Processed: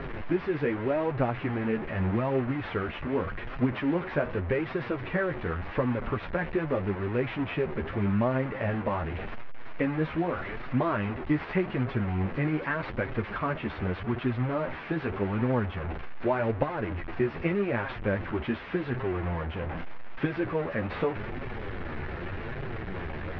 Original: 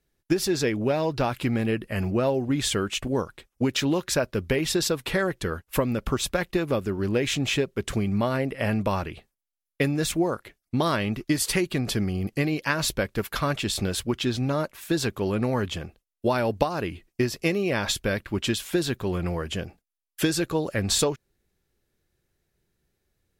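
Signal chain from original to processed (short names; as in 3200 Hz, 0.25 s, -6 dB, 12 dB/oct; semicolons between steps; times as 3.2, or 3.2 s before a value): delta modulation 32 kbps, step -25 dBFS; LPF 2200 Hz 24 dB/oct; reverse; upward compressor, threshold -30 dBFS; reverse; flange 0.84 Hz, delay 7.2 ms, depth 6.6 ms, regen +14%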